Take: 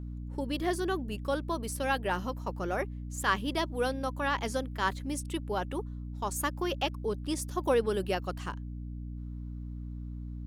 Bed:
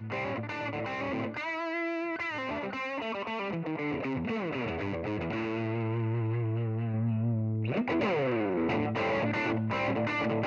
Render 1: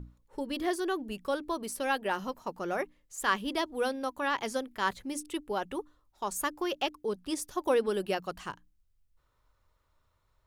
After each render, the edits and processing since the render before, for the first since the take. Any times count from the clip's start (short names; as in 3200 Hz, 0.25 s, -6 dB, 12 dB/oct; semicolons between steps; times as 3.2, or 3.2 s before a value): notches 60/120/180/240/300 Hz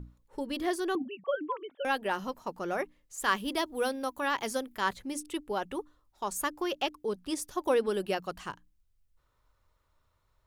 0.95–1.85 sine-wave speech; 3.23–4.81 high shelf 10000 Hz +10 dB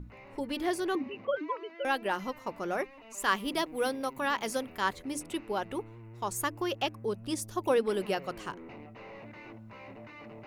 add bed -18 dB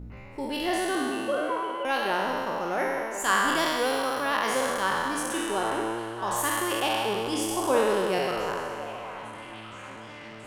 spectral trails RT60 2.17 s; delay with a stepping band-pass 0.68 s, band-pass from 740 Hz, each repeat 0.7 oct, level -8 dB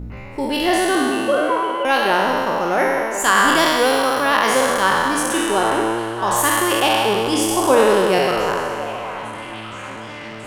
gain +10 dB; limiter -2 dBFS, peak gain reduction 3 dB